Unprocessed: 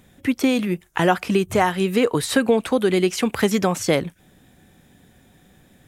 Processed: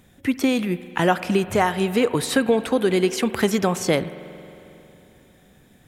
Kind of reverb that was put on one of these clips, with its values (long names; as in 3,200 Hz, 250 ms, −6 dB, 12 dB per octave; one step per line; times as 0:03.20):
spring reverb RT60 3.2 s, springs 45 ms, chirp 60 ms, DRR 13.5 dB
level −1 dB